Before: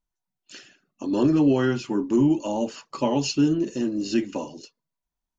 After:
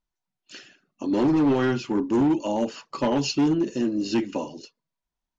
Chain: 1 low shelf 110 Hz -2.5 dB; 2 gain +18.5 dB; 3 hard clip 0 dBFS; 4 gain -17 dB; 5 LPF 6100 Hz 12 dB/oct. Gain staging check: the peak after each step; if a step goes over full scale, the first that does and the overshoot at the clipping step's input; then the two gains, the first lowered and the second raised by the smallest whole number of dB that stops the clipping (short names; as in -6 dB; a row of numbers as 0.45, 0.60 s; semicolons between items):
-11.5, +7.0, 0.0, -17.0, -16.5 dBFS; step 2, 7.0 dB; step 2 +11.5 dB, step 4 -10 dB